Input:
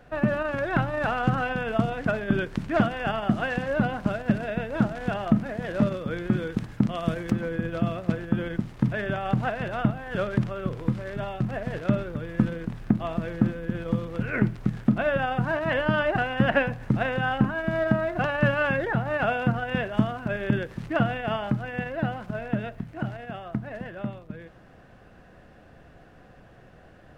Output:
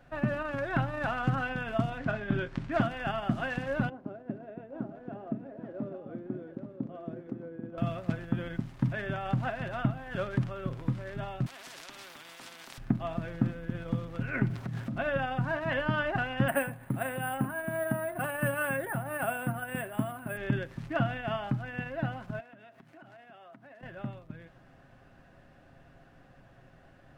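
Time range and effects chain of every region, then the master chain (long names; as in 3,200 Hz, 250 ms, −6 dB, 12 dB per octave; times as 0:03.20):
0:01.98–0:02.72: high-frequency loss of the air 67 metres + double-tracking delay 24 ms −9 dB + highs frequency-modulated by the lows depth 0.11 ms
0:03.89–0:07.78: resonant band-pass 380 Hz, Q 1.9 + single-tap delay 830 ms −8 dB
0:11.46–0:12.78: high-pass filter 390 Hz 24 dB per octave + transient designer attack −7 dB, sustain +5 dB + every bin compressed towards the loudest bin 4 to 1
0:14.50–0:14.95: high-pass filter 62 Hz 24 dB per octave + downward compressor, threshold −30 dBFS + leveller curve on the samples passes 2
0:16.48–0:20.37: high-pass filter 190 Hz 6 dB per octave + high-frequency loss of the air 210 metres + bad sample-rate conversion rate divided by 4×, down filtered, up hold
0:22.40–0:23.83: high-pass filter 280 Hz + downward compressor 8 to 1, threshold −43 dBFS
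whole clip: parametric band 450 Hz −9 dB 0.24 octaves; comb filter 7.4 ms, depth 33%; level −5.5 dB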